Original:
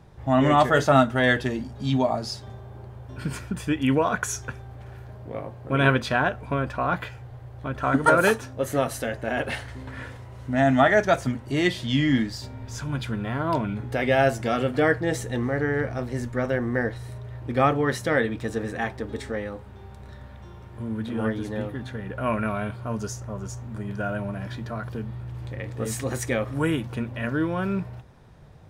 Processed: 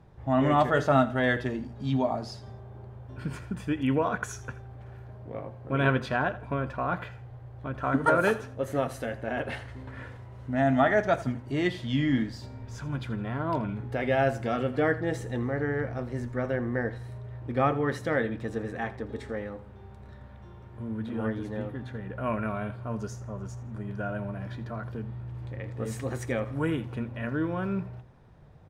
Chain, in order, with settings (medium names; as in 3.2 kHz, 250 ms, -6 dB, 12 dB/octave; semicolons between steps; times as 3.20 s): treble shelf 3.5 kHz -9.5 dB; on a send: feedback delay 82 ms, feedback 33%, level -17 dB; on the sum: trim -4 dB